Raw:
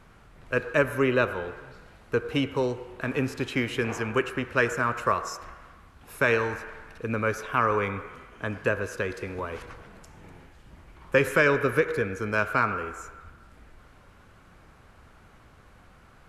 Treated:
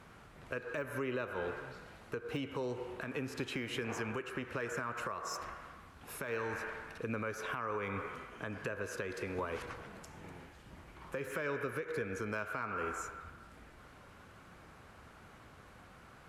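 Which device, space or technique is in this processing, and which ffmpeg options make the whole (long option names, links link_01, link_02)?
podcast mastering chain: -af "highpass=frequency=100:poles=1,deesser=0.85,acompressor=threshold=-31dB:ratio=4,alimiter=level_in=2.5dB:limit=-24dB:level=0:latency=1:release=227,volume=-2.5dB" -ar 44100 -c:a libmp3lame -b:a 112k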